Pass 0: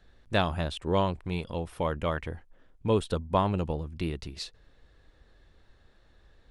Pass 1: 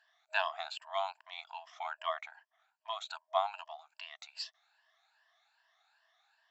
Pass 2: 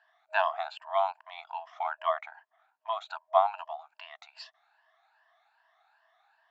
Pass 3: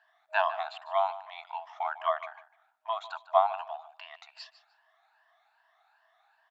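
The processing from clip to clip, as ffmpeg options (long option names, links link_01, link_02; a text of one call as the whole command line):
ffmpeg -i in.wav -af "afftfilt=real='re*pow(10,13/40*sin(2*PI*(1.3*log(max(b,1)*sr/1024/100)/log(2)-(2.5)*(pts-256)/sr)))':imag='im*pow(10,13/40*sin(2*PI*(1.3*log(max(b,1)*sr/1024/100)/log(2)-(2.5)*(pts-256)/sr)))':win_size=1024:overlap=0.75,afftfilt=real='re*between(b*sr/4096,630,7700)':imag='im*between(b*sr/4096,630,7700)':win_size=4096:overlap=0.75,volume=-5dB" out.wav
ffmpeg -i in.wav -af "bandpass=frequency=730:width_type=q:width=0.77:csg=0,volume=8.5dB" out.wav
ffmpeg -i in.wav -af "aecho=1:1:150|300:0.168|0.0336" out.wav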